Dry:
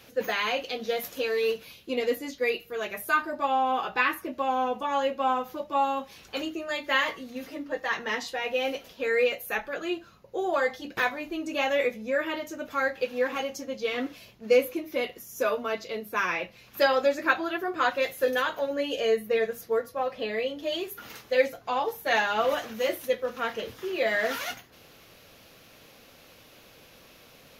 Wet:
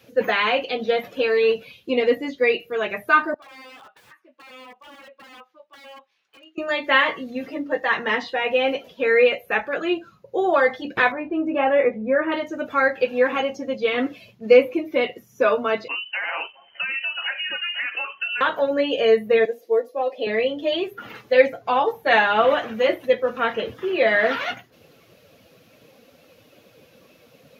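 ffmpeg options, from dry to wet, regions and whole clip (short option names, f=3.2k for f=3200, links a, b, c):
-filter_complex "[0:a]asettb=1/sr,asplit=3[a][b][c];[a]atrim=end=3.344[d];[b]atrim=start=3.34:end=6.58,asetpts=PTS-STARTPTS,afade=t=in:d=0.004:c=qsin,afade=t=out:st=3.236:d=0.004:c=qsin,lowpass=2k,aderivative,aeval=exprs='(mod(141*val(0)+1,2)-1)/141':c=same[e];[c]atrim=start=6.576[f];[d][e]acrossfade=d=0.004:c1=hsin:c2=qsin[g];[g][f]acrossfade=d=0.004:c1=qsin:c2=hsin,asettb=1/sr,asplit=3[h][i][j];[h]atrim=end=11.124[k];[i]atrim=start=11.12:end=12.32,asetpts=PTS-STARTPTS,afade=t=in:d=0.004:c=qsin,afade=t=out:st=1.196:d=0.004:c=qsin,lowpass=1.6k,asplit=2[l][m];[m]adelay=19,volume=-11dB[n];[l][n]amix=inputs=2:normalize=0,atrim=end_sample=52920[o];[j]atrim=start=12.316[p];[k][o]acrossfade=d=0.004:c1=hsin:c2=qsin[q];[q][p]acrossfade=d=0.004:c1=qsin:c2=hsin,asettb=1/sr,asplit=3[r][s][t];[r]atrim=end=15.884[u];[s]atrim=start=15.88:end=18.41,asetpts=PTS-STARTPTS,afade=t=in:d=0.004:c=qsin,afade=t=out:st=2.526:d=0.004:c=qsin,acompressor=threshold=-30dB:ratio=12:attack=3.2:release=140:knee=1:detection=peak,acrusher=bits=5:mode=log:mix=0:aa=0.000001,lowpass=f=2.7k:t=q:w=0.5098,lowpass=f=2.7k:t=q:w=0.6013,lowpass=f=2.7k:t=q:w=0.9,lowpass=f=2.7k:t=q:w=2.563,afreqshift=-3200[v];[t]atrim=start=18.406[w];[u][v]acrossfade=d=0.004:c1=hsin:c2=qsin[x];[x][w]acrossfade=d=0.004:c1=qsin:c2=hsin,asettb=1/sr,asplit=3[y][z][aa];[y]atrim=end=19.454[ab];[z]atrim=start=19.45:end=20.27,asetpts=PTS-STARTPTS,afade=t=in:d=0.004:c=qsin,afade=t=out:st=0.816:d=0.004:c=qsin,highpass=f=290:w=0.5412,highpass=f=290:w=1.3066,equalizer=f=1.4k:t=o:w=1:g=-13.5[ac];[aa]atrim=start=20.266[ad];[ab][ac]acrossfade=d=0.004:c1=hsin:c2=qsin[ae];[ae][ad]acrossfade=d=0.004:c1=qsin:c2=hsin,highpass=71,acrossover=split=3900[af][ag];[ag]acompressor=threshold=-55dB:ratio=4:attack=1:release=60[ah];[af][ah]amix=inputs=2:normalize=0,afftdn=nr=12:nf=-48,volume=8dB"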